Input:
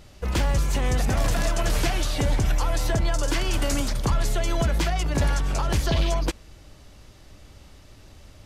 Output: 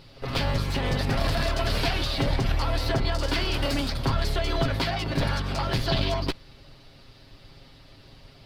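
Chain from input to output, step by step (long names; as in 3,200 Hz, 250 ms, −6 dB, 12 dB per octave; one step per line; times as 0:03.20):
lower of the sound and its delayed copy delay 7.4 ms
high shelf with overshoot 5,500 Hz −6.5 dB, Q 3
echo ahead of the sound 69 ms −19 dB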